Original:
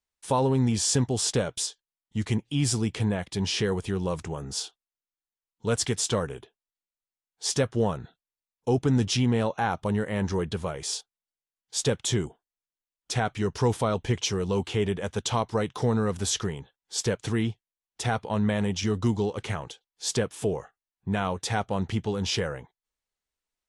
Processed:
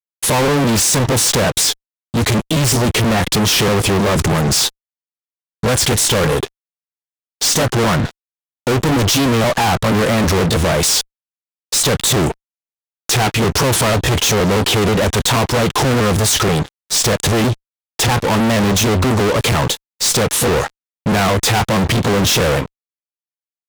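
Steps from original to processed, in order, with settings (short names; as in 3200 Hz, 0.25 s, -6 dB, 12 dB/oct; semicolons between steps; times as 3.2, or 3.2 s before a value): trilling pitch shifter +1.5 st, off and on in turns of 0.16 s; fuzz box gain 47 dB, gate -55 dBFS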